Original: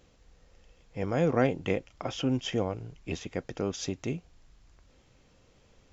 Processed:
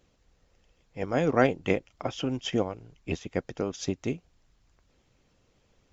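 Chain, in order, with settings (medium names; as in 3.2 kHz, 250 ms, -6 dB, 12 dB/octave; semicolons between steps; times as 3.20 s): harmonic-percussive split percussive +7 dB; upward expansion 1.5:1, over -36 dBFS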